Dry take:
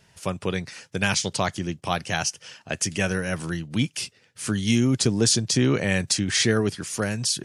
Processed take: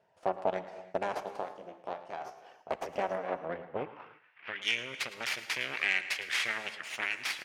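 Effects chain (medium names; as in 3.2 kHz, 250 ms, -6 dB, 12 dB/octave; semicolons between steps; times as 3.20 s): 3.15–4.62 s: CVSD coder 16 kbps; reverb removal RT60 0.55 s; compression 6:1, threshold -24 dBFS, peak gain reduction 8.5 dB; 1.20–2.41 s: feedback comb 67 Hz, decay 0.37 s, harmonics all, mix 80%; Chebyshev shaper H 6 -6 dB, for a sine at -12 dBFS; delay 109 ms -16 dB; reverberation, pre-delay 3 ms, DRR 12 dB; band-pass sweep 660 Hz -> 2.3 kHz, 3.74–4.46 s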